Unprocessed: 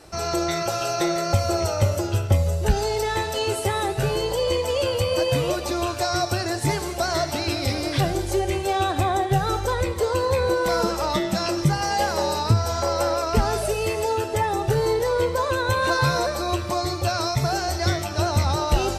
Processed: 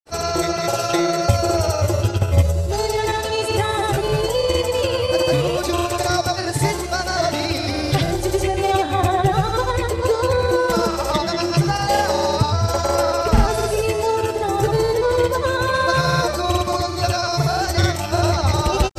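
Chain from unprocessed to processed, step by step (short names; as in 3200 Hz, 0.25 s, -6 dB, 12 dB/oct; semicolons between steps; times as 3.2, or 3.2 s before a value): grains 0.1 s, grains 20/s, pitch spread up and down by 0 st; gain +5 dB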